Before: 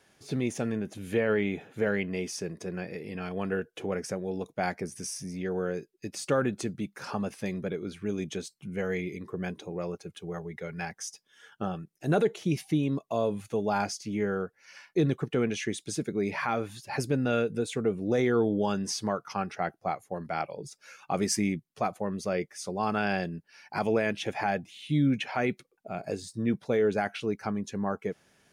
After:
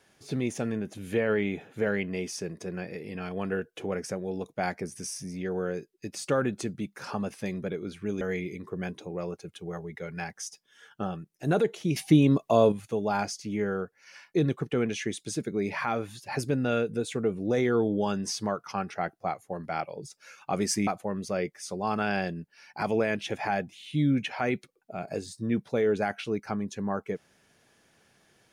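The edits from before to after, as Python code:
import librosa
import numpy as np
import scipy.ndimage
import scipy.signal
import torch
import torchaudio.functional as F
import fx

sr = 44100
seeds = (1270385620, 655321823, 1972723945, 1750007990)

y = fx.edit(x, sr, fx.cut(start_s=8.21, length_s=0.61),
    fx.clip_gain(start_s=12.57, length_s=0.76, db=7.5),
    fx.cut(start_s=21.48, length_s=0.35), tone=tone)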